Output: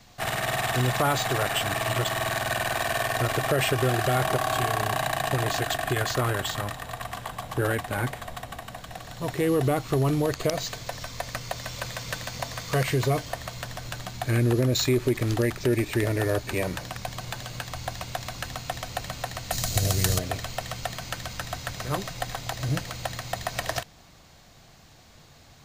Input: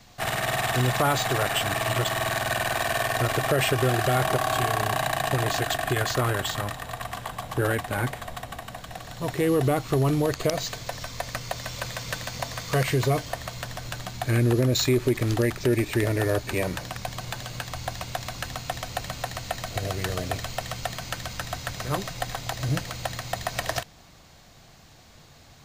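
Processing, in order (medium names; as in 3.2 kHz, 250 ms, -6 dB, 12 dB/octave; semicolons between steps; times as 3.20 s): 19.51–20.19 s: tone controls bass +8 dB, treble +14 dB; trim -1 dB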